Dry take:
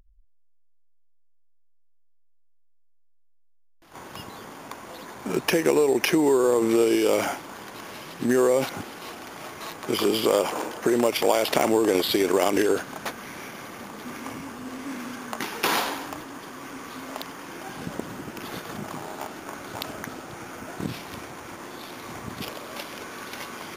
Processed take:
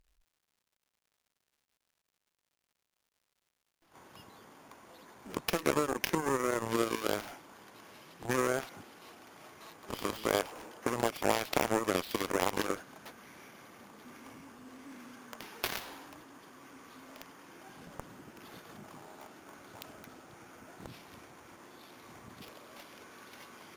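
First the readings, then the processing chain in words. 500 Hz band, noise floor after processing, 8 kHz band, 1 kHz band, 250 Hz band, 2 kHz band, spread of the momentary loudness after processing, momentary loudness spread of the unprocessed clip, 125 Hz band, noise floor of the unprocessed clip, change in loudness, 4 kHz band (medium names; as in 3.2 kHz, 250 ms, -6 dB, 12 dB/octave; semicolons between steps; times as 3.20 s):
-12.5 dB, -85 dBFS, -9.0 dB, -7.5 dB, -12.5 dB, -8.0 dB, 22 LU, 18 LU, -7.0 dB, -56 dBFS, -8.0 dB, -10.5 dB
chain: Chebyshev shaper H 3 -18 dB, 7 -17 dB, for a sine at -6.5 dBFS; crackle 200 per s -57 dBFS; trim -5.5 dB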